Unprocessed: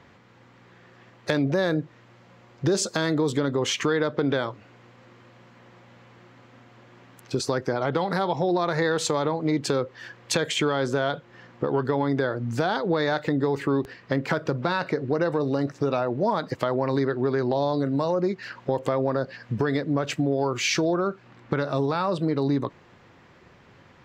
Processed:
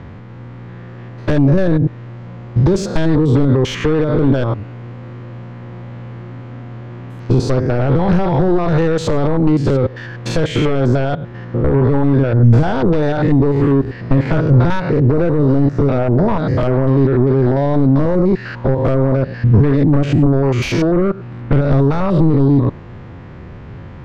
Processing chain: stepped spectrum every 0.1 s; compressor 6:1, threshold -26 dBFS, peak gain reduction 6.5 dB; sine folder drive 12 dB, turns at -12 dBFS; RIAA curve playback; gain -2 dB

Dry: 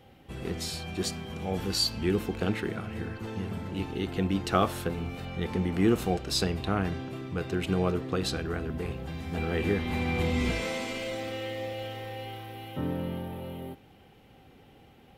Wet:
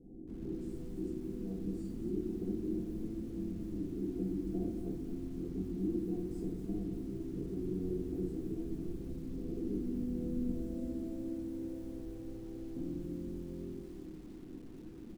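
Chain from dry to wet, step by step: octaver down 2 oct, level -5 dB; elliptic band-stop 380–8300 Hz, stop band 60 dB; high shelf 3100 Hz +4 dB; notches 60/120/180 Hz; comb 5.8 ms, depth 37%; compressor 3:1, threshold -49 dBFS, peak gain reduction 22.5 dB; tape spacing loss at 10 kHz 23 dB; small resonant body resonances 300/710 Hz, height 13 dB, ringing for 35 ms; reverb RT60 0.75 s, pre-delay 5 ms, DRR -4 dB; lo-fi delay 0.235 s, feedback 35%, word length 9-bit, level -8 dB; gain -3 dB

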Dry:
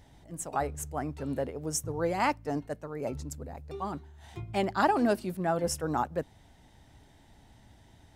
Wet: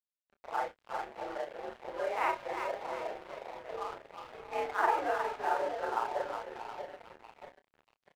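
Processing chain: short-time reversal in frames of 0.102 s; in parallel at -2.5 dB: compressor 16:1, threshold -42 dBFS, peak gain reduction 20 dB; on the sum: split-band echo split 800 Hz, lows 0.636 s, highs 0.362 s, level -5 dB; on a send at -17.5 dB: reverb RT60 2.9 s, pre-delay 6 ms; on the sum: mistuned SSB +61 Hz 370–2600 Hz; crossover distortion -44.5 dBFS; doubler 27 ms -11 dB

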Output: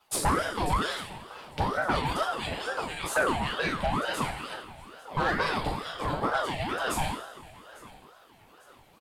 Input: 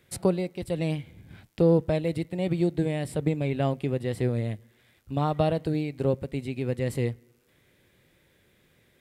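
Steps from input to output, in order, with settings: median-filter separation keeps percussive; in parallel at -8.5 dB: crossover distortion -57.5 dBFS; on the sum: two-slope reverb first 0.57 s, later 2.3 s, from -18 dB, DRR -4.5 dB; soft clip -21.5 dBFS, distortion -11 dB; on a send: feedback echo 0.849 s, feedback 44%, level -20.5 dB; on the sum: ring modulator with a swept carrier 720 Hz, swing 50%, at 2.2 Hz; gain +4.5 dB

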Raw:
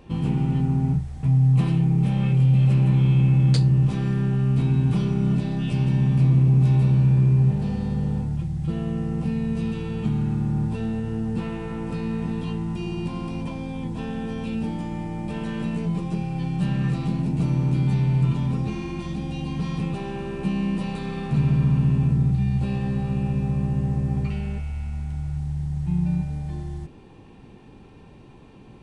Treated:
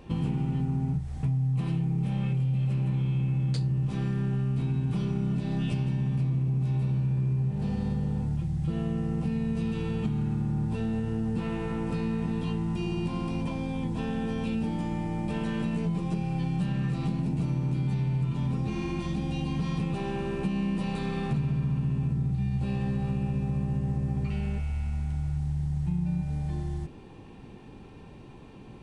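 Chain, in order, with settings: compressor, threshold -25 dBFS, peak gain reduction 10.5 dB

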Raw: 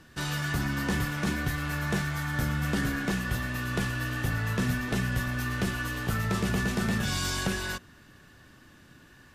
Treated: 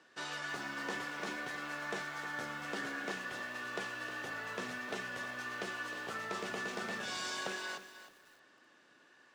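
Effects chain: Chebyshev band-pass 470–7600 Hz, order 2; high shelf 6200 Hz -8.5 dB; lo-fi delay 0.309 s, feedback 35%, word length 8-bit, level -11.5 dB; gain -5 dB

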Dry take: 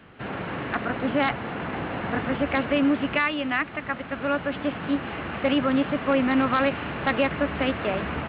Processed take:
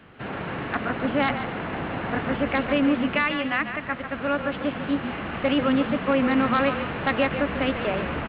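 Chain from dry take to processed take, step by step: frequency-shifting echo 0.144 s, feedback 36%, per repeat -37 Hz, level -9 dB

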